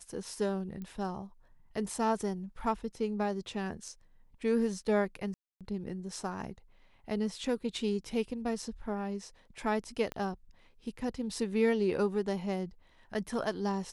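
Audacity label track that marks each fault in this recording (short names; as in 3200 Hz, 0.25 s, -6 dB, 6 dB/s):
0.820000	0.820000	pop -30 dBFS
5.340000	5.610000	gap 0.267 s
10.120000	10.120000	pop -22 dBFS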